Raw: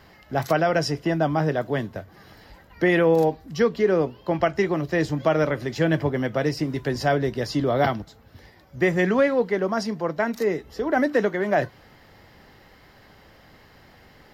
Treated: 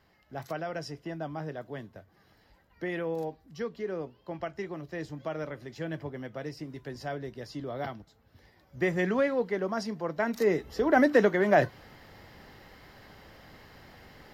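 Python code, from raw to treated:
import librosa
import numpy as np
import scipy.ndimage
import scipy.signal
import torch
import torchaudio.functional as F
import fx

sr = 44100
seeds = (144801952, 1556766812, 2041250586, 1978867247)

y = fx.gain(x, sr, db=fx.line((7.99, -14.5), (8.8, -7.0), (10.08, -7.0), (10.58, -0.5)))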